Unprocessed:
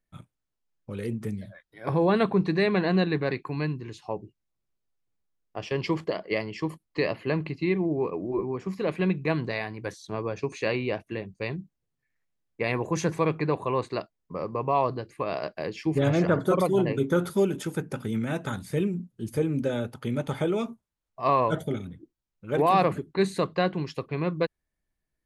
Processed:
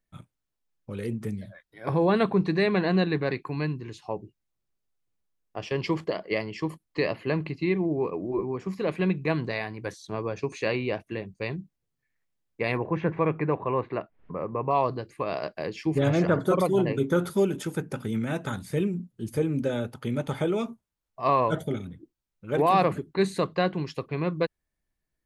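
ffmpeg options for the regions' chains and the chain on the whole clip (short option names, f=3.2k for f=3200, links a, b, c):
-filter_complex "[0:a]asettb=1/sr,asplit=3[a][b][c];[a]atrim=end=12.774[d];[b]atrim=start=12.77:end=14.71,asetpts=PTS-STARTPTS,afade=t=in:d=0.004:c=qsin,afade=t=out:st=1.936:d=0.004:c=qsin,lowpass=f=2.5k:w=0.5412,lowpass=f=2.5k:w=1.3066,acompressor=mode=upward:threshold=-31dB:ratio=2.5:attack=3.2:release=140:knee=2.83:detection=peak[e];[c]atrim=start=14.706[f];[d][e]acrossfade=d=0.004:c1=hsin:c2=qsin[g];[g][f]acrossfade=d=0.004:c1=qsin:c2=hsin"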